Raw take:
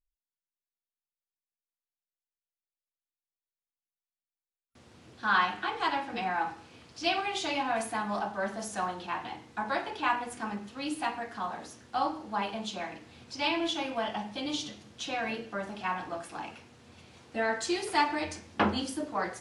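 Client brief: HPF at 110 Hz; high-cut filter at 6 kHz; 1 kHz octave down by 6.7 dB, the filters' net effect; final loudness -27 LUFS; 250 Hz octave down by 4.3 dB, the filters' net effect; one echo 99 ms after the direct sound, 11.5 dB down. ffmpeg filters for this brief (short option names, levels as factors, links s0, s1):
-af "highpass=110,lowpass=6000,equalizer=f=250:t=o:g=-5,equalizer=f=1000:t=o:g=-8.5,aecho=1:1:99:0.266,volume=2.82"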